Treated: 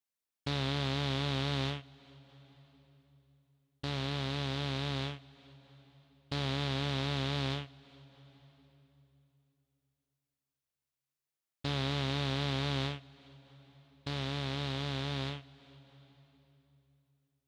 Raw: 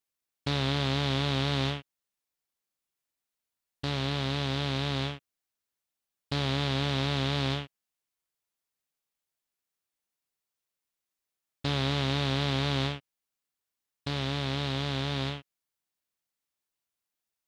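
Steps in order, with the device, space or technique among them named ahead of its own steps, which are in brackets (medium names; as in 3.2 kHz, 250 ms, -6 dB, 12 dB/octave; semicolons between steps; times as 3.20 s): compressed reverb return (on a send at -11.5 dB: reverberation RT60 2.9 s, pre-delay 49 ms + compression 6:1, threshold -37 dBFS, peak gain reduction 13 dB); on the sum: trim -5 dB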